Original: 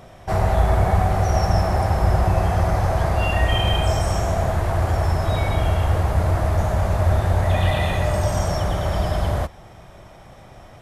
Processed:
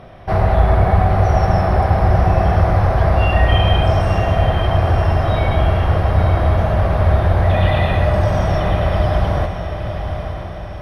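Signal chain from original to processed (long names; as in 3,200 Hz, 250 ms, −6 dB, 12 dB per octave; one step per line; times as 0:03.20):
moving average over 6 samples
notch filter 900 Hz, Q 18
on a send: feedback delay with all-pass diffusion 938 ms, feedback 50%, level −8 dB
on the sum: level +4.5 dB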